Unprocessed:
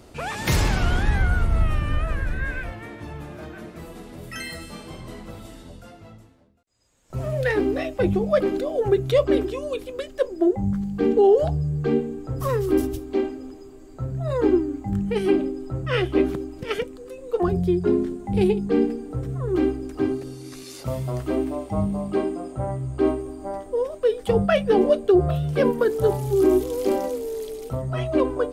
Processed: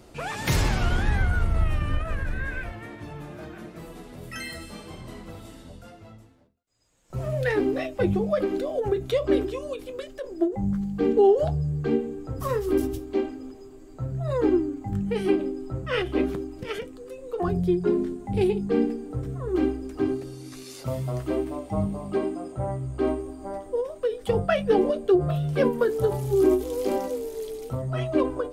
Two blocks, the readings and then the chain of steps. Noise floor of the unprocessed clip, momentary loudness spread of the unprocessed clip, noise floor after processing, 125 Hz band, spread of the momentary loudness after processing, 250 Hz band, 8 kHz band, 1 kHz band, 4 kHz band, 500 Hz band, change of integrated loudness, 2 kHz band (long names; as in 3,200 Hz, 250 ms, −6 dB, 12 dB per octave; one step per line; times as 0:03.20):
−44 dBFS, 17 LU, −46 dBFS, −2.5 dB, 17 LU, −3.0 dB, can't be measured, −2.5 dB, −2.5 dB, −3.0 dB, −3.0 dB, −2.5 dB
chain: flanger 0.28 Hz, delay 5.5 ms, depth 6.4 ms, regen −60%
every ending faded ahead of time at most 150 dB per second
level +2 dB